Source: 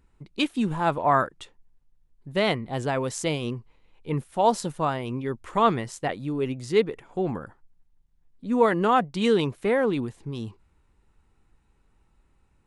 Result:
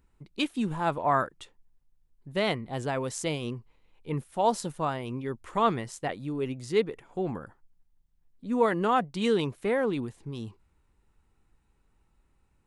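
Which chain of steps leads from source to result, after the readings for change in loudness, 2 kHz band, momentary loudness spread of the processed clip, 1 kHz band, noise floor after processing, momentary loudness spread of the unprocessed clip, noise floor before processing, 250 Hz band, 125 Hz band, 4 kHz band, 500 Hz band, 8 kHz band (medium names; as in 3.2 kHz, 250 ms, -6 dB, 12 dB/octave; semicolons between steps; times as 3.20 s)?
-4.0 dB, -4.0 dB, 12 LU, -4.0 dB, -70 dBFS, 12 LU, -66 dBFS, -4.0 dB, -4.0 dB, -3.5 dB, -4.0 dB, -2.5 dB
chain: treble shelf 10 kHz +4.5 dB; trim -4 dB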